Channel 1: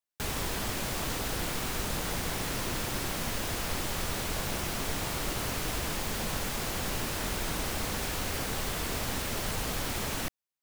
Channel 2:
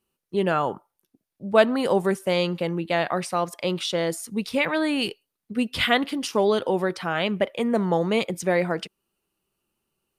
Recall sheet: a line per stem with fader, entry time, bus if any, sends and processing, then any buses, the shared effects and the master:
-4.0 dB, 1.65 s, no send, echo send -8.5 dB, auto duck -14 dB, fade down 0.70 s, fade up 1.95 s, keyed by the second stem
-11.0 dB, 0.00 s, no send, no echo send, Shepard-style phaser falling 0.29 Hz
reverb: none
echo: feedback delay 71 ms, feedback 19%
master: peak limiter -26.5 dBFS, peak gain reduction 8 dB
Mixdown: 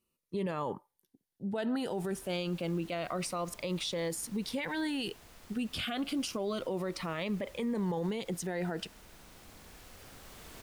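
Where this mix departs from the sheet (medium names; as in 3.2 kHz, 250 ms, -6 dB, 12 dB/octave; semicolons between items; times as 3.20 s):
stem 1 -4.0 dB -> -15.5 dB; stem 2 -11.0 dB -> -3.0 dB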